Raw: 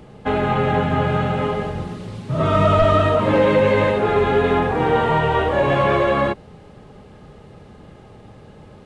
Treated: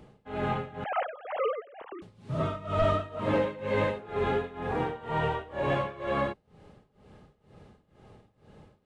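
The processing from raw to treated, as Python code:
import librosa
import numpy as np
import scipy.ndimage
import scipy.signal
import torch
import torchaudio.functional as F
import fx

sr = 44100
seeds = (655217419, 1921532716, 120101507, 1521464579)

y = fx.sine_speech(x, sr, at=(0.84, 2.02))
y = y * (1.0 - 0.9 / 2.0 + 0.9 / 2.0 * np.cos(2.0 * np.pi * 2.1 * (np.arange(len(y)) / sr)))
y = y * 10.0 ** (-9.0 / 20.0)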